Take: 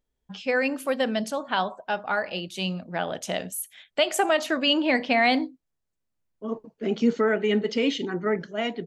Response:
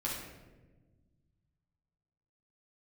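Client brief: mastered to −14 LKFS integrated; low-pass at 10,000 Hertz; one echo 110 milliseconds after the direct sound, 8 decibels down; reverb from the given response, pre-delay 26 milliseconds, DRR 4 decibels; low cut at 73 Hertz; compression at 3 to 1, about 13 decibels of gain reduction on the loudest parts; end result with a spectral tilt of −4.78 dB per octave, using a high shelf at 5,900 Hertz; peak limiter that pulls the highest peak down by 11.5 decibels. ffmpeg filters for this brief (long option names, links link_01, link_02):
-filter_complex "[0:a]highpass=73,lowpass=10000,highshelf=frequency=5900:gain=-7,acompressor=threshold=-35dB:ratio=3,alimiter=level_in=7dB:limit=-24dB:level=0:latency=1,volume=-7dB,aecho=1:1:110:0.398,asplit=2[link_01][link_02];[1:a]atrim=start_sample=2205,adelay=26[link_03];[link_02][link_03]afir=irnorm=-1:irlink=0,volume=-7.5dB[link_04];[link_01][link_04]amix=inputs=2:normalize=0,volume=24dB"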